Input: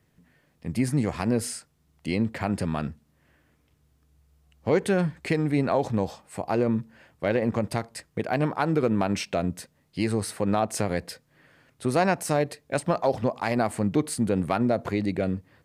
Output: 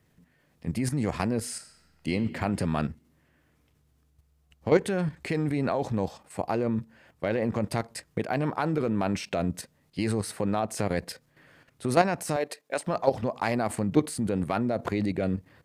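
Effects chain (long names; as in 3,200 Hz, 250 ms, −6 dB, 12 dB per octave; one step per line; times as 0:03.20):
0:12.36–0:12.87: high-pass filter 390 Hz 12 dB per octave
output level in coarse steps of 10 dB
0:01.53–0:02.11: thrown reverb, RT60 1.8 s, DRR 5.5 dB
level +3.5 dB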